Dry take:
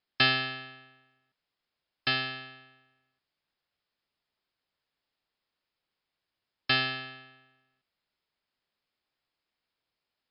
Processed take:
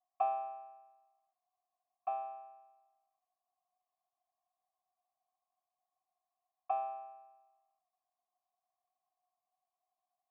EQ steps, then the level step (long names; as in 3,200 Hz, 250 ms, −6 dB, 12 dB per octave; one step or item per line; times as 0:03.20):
formant resonators in series a
formant filter a
low-shelf EQ 180 Hz −12 dB
+16.5 dB